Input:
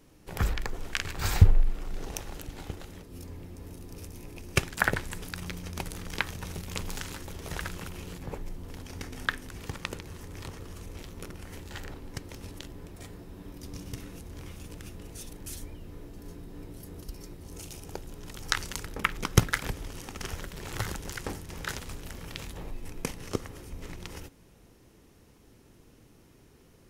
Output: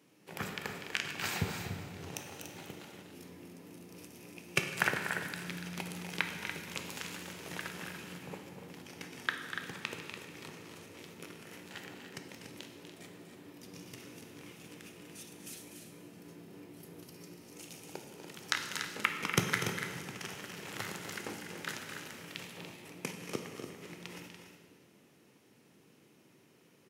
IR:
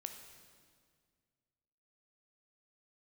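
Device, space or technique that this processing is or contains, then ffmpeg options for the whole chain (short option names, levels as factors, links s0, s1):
stadium PA: -filter_complex "[0:a]highpass=f=140:w=0.5412,highpass=f=140:w=1.3066,equalizer=f=2500:t=o:w=0.91:g=5,aecho=1:1:244.9|288.6:0.316|0.355[s0];[1:a]atrim=start_sample=2205[s1];[s0][s1]afir=irnorm=-1:irlink=0,volume=0.794"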